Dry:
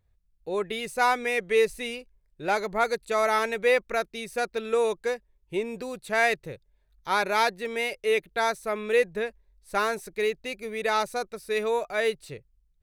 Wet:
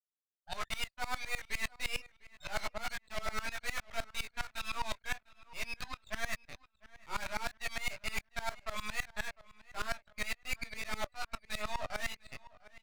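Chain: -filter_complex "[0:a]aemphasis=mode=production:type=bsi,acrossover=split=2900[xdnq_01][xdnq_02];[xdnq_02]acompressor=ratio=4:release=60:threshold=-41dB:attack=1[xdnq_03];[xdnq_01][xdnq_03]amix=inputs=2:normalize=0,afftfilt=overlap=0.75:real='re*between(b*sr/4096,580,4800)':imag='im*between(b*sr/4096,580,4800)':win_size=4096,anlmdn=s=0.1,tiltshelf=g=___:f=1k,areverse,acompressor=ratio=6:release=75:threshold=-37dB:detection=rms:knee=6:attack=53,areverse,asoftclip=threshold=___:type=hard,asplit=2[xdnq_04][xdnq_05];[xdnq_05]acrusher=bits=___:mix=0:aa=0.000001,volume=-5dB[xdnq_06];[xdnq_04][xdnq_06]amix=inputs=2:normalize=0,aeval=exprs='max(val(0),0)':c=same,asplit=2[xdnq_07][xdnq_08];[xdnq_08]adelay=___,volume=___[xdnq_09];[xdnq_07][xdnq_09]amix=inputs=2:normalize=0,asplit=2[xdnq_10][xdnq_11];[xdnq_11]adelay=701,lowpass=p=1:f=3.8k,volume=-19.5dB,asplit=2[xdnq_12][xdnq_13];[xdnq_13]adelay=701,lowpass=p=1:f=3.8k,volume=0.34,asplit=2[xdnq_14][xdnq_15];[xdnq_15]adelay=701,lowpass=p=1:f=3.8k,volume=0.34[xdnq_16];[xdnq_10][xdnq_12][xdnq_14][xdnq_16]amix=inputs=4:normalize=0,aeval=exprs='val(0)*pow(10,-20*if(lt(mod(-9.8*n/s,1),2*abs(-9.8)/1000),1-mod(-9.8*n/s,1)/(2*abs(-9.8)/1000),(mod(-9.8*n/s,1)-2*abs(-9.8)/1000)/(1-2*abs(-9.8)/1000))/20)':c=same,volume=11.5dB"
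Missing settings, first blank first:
-5, -37.5dB, 4, 19, -4dB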